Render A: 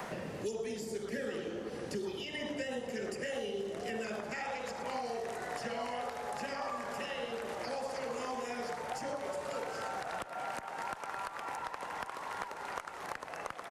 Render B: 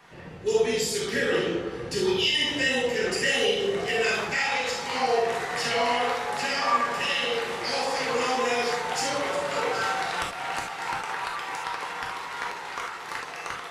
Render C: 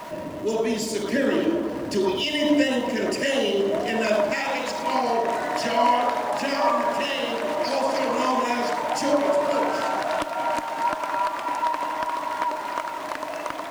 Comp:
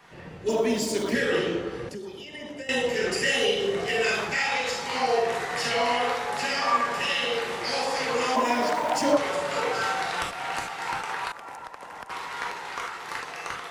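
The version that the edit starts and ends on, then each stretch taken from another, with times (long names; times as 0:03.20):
B
0:00.49–0:01.15: punch in from C
0:01.89–0:02.69: punch in from A
0:08.36–0:09.17: punch in from C
0:11.32–0:12.10: punch in from A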